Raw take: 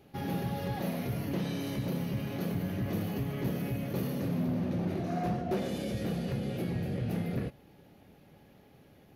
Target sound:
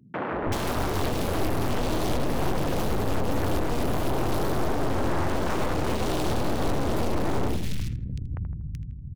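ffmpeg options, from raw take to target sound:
-filter_complex "[0:a]acrossover=split=130[a][b];[a]dynaudnorm=f=130:g=13:m=9.5dB[c];[b]acrusher=bits=5:dc=4:mix=0:aa=0.000001[d];[c][d]amix=inputs=2:normalize=0,highshelf=f=5.7k:g=6.5,asplit=2[e][f];[f]adelay=80,lowpass=f=1.8k:p=1,volume=-9dB,asplit=2[g][h];[h]adelay=80,lowpass=f=1.8k:p=1,volume=0.35,asplit=2[i][j];[j]adelay=80,lowpass=f=1.8k:p=1,volume=0.35,asplit=2[k][l];[l]adelay=80,lowpass=f=1.8k:p=1,volume=0.35[m];[g][i][k][m]amix=inputs=4:normalize=0[n];[e][n]amix=inputs=2:normalize=0,apsyclip=24.5dB,acompressor=threshold=-17dB:ratio=2.5,aeval=exprs='0.501*(cos(1*acos(clip(val(0)/0.501,-1,1)))-cos(1*PI/2))+0.126*(cos(2*acos(clip(val(0)/0.501,-1,1)))-cos(2*PI/2))+0.251*(cos(4*acos(clip(val(0)/0.501,-1,1)))-cos(4*PI/2))+0.00447*(cos(7*acos(clip(val(0)/0.501,-1,1)))-cos(7*PI/2))+0.0112*(cos(8*acos(clip(val(0)/0.501,-1,1)))-cos(8*PI/2))':c=same,aemphasis=mode=reproduction:type=50kf,aeval=exprs='(tanh(14.1*val(0)+0.05)-tanh(0.05))/14.1':c=same,aeval=exprs='val(0)+0.00251*(sin(2*PI*50*n/s)+sin(2*PI*2*50*n/s)/2+sin(2*PI*3*50*n/s)/3+sin(2*PI*4*50*n/s)/4+sin(2*PI*5*50*n/s)/5)':c=same,acrossover=split=170|2200[o][p][q];[o]adelay=320[r];[q]adelay=380[s];[r][p][s]amix=inputs=3:normalize=0,volume=3.5dB"

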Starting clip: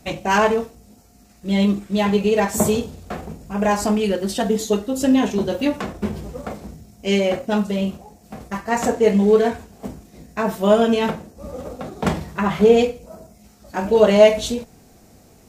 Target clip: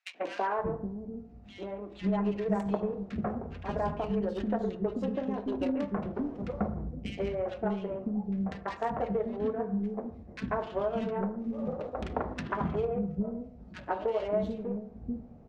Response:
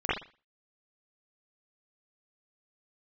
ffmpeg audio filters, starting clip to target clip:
-filter_complex "[0:a]highshelf=f=8.8k:g=-9,acompressor=threshold=-25dB:ratio=10,aeval=exprs='0.188*(cos(1*acos(clip(val(0)/0.188,-1,1)))-cos(1*PI/2))+0.0075*(cos(7*acos(clip(val(0)/0.188,-1,1)))-cos(7*PI/2))':c=same,adynamicsmooth=sensitivity=1.5:basefreq=1.1k,acrossover=split=320|1900[a][b][c];[b]adelay=140[d];[a]adelay=580[e];[e][d][c]amix=inputs=3:normalize=0,asplit=2[f][g];[1:a]atrim=start_sample=2205,asetrate=25137,aresample=44100[h];[g][h]afir=irnorm=-1:irlink=0,volume=-30.5dB[i];[f][i]amix=inputs=2:normalize=0"

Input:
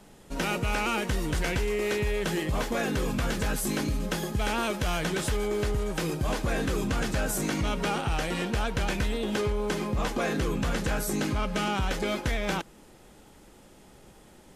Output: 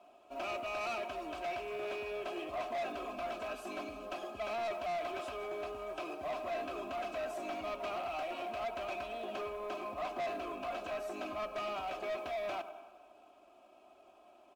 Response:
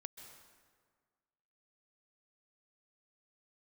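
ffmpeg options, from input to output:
-filter_complex "[0:a]asplit=3[a][b][c];[a]bandpass=f=730:t=q:w=8,volume=0dB[d];[b]bandpass=f=1.09k:t=q:w=8,volume=-6dB[e];[c]bandpass=f=2.44k:t=q:w=8,volume=-9dB[f];[d][e][f]amix=inputs=3:normalize=0,bandreject=f=60:t=h:w=6,bandreject=f=120:t=h:w=6,bandreject=f=180:t=h:w=6,aecho=1:1:3.1:0.82,asplit=2[g][h];[h]adelay=96,lowpass=f=2k:p=1,volume=-15dB,asplit=2[i][j];[j]adelay=96,lowpass=f=2k:p=1,volume=0.52,asplit=2[k][l];[l]adelay=96,lowpass=f=2k:p=1,volume=0.52,asplit=2[m][n];[n]adelay=96,lowpass=f=2k:p=1,volume=0.52,asplit=2[o][p];[p]adelay=96,lowpass=f=2k:p=1,volume=0.52[q];[g][i][k][m][o][q]amix=inputs=6:normalize=0,acrusher=bits=7:mode=log:mix=0:aa=0.000001,asplit=2[r][s];[1:a]atrim=start_sample=2205[t];[s][t]afir=irnorm=-1:irlink=0,volume=-5dB[u];[r][u]amix=inputs=2:normalize=0,asoftclip=type=tanh:threshold=-35.5dB,volume=2dB" -ar 48000 -c:a aac -b:a 96k

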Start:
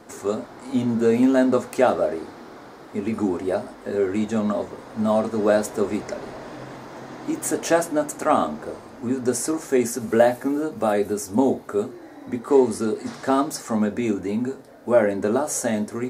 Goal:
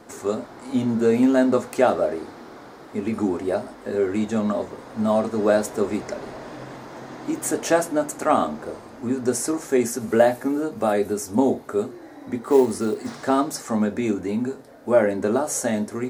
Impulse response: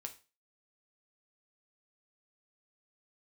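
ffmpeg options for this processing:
-filter_complex "[0:a]asettb=1/sr,asplit=3[a][b][c];[a]atrim=end=12.434[d];[b]atrim=start=12.43:end=13.26,asetpts=PTS-STARTPTS,afade=t=in:d=0.004:c=qsin,afade=t=out:st=0.826:d=0.004:c=qsin,acrusher=bits=7:mode=log:mix=0:aa=0.000001[e];[c]atrim=start=13.256[f];[d][e]acrossfade=d=0.004:c1=hsin:c2=qsin[g];[g][f]acrossfade=d=0.004:c1=qsin:c2=hsin"

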